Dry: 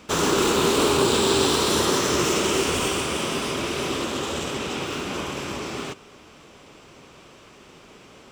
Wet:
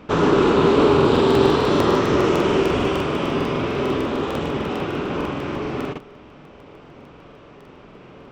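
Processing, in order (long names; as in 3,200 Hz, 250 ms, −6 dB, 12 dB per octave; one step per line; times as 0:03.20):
head-to-tape spacing loss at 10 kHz 35 dB
convolution reverb RT60 0.40 s, pre-delay 7 ms, DRR 14.5 dB
regular buffer underruns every 0.15 s, samples 2,048, repeat, from 0:00.96
level +7 dB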